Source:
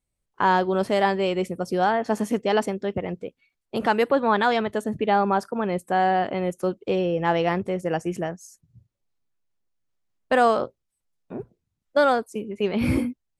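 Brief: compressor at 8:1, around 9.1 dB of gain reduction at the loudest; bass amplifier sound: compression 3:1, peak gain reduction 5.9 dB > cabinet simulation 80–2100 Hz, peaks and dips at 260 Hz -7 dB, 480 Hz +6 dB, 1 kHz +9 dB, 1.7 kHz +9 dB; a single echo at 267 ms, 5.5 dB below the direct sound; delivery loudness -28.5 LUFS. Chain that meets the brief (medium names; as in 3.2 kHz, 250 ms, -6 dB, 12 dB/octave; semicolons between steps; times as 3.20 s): compression 8:1, threshold -24 dBFS; delay 267 ms -5.5 dB; compression 3:1, threshold -29 dBFS; cabinet simulation 80–2100 Hz, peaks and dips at 260 Hz -7 dB, 480 Hz +6 dB, 1 kHz +9 dB, 1.7 kHz +9 dB; trim +2 dB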